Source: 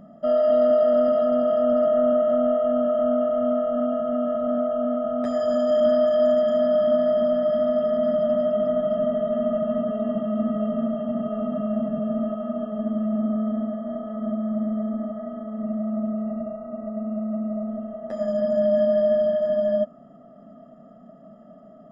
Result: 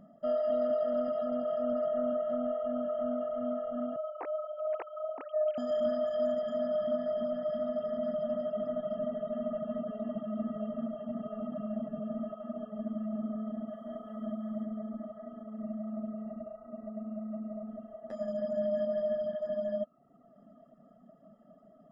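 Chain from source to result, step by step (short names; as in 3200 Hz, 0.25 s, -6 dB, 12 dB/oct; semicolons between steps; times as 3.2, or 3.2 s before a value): 3.96–5.58 sine-wave speech; reverb removal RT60 0.76 s; 13.67–14.65 high shelf 2400 Hz +10.5 dB; gain -9 dB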